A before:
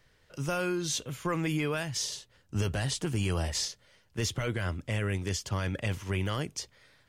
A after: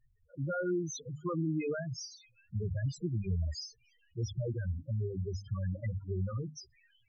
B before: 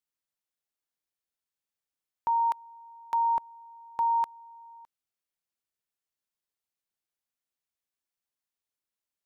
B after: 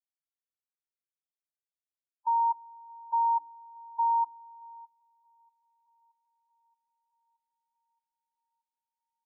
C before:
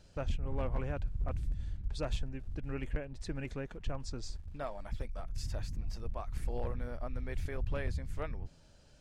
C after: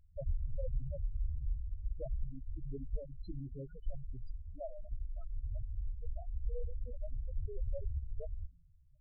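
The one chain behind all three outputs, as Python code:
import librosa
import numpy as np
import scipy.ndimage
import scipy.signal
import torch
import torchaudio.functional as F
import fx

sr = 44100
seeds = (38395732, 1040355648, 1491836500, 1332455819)

y = fx.hum_notches(x, sr, base_hz=50, count=6)
y = fx.echo_wet_highpass(y, sr, ms=625, feedback_pct=63, hz=2200.0, wet_db=-20)
y = fx.spec_topn(y, sr, count=4)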